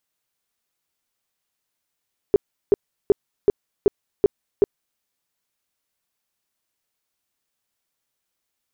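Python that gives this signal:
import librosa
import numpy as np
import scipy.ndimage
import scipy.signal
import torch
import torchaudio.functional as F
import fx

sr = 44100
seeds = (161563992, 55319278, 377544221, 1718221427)

y = fx.tone_burst(sr, hz=405.0, cycles=8, every_s=0.38, bursts=7, level_db=-9.5)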